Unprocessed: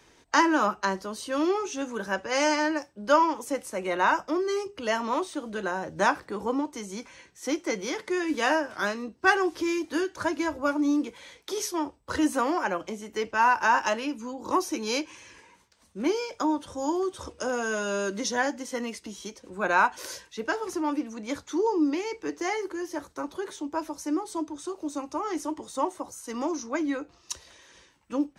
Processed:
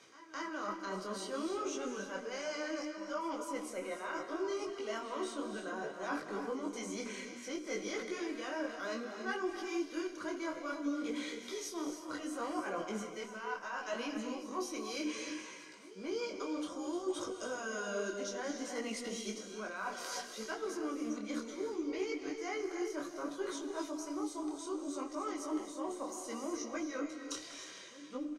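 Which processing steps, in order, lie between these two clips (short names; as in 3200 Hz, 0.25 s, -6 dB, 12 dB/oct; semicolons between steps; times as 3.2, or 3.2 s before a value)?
HPF 180 Hz 12 dB/oct; high shelf 5400 Hz +7.5 dB; notches 60/120/180/240/300/360 Hz; reverse; compressor 10:1, threshold -40 dBFS, peak gain reduction 24.5 dB; reverse; notch comb 880 Hz; pre-echo 0.215 s -16.5 dB; added harmonics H 8 -38 dB, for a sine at -27 dBFS; air absorption 50 m; on a send: echo 0.355 s -16.5 dB; on the sum: non-linear reverb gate 0.33 s rising, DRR 6 dB; detuned doubles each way 22 cents; gain +7.5 dB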